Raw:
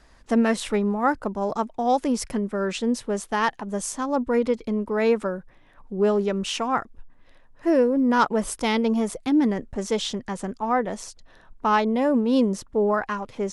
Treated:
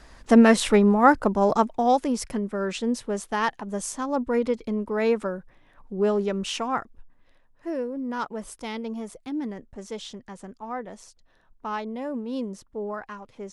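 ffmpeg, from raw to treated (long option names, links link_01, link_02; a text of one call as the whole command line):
ffmpeg -i in.wav -af "volume=5.5dB,afade=type=out:start_time=1.54:duration=0.53:silence=0.421697,afade=type=out:start_time=6.54:duration=1.17:silence=0.375837" out.wav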